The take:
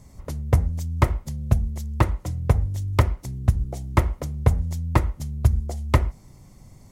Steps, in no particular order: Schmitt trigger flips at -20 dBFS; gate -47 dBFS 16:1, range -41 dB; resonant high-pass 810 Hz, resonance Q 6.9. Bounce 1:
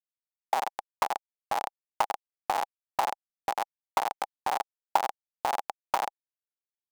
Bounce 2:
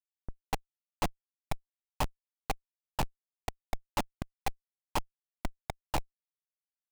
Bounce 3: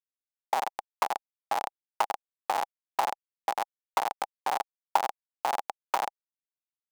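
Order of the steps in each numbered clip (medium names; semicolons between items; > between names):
Schmitt trigger > resonant high-pass > gate; resonant high-pass > Schmitt trigger > gate; Schmitt trigger > gate > resonant high-pass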